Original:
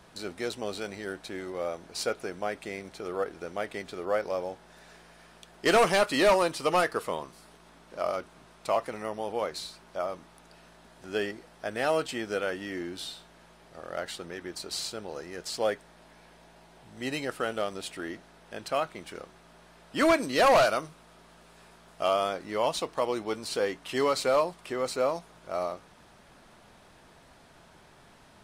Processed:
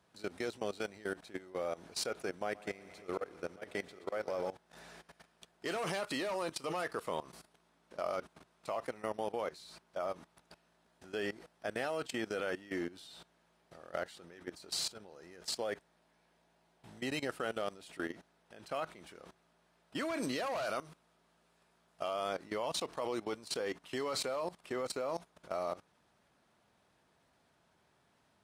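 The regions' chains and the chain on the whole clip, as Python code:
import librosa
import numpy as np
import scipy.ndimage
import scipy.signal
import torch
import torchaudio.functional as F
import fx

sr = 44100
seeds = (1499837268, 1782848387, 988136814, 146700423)

y = fx.chain(x, sr, fx.auto_swell(attack_ms=117.0),
    fx.echo_heads(ms=63, heads='second and third', feedback_pct=65, wet_db=-14), at=(2.41, 4.5))
y = fx.level_steps(y, sr, step_db=18)
y = scipy.signal.sosfilt(scipy.signal.butter(2, 64.0, 'highpass', fs=sr, output='sos'), y)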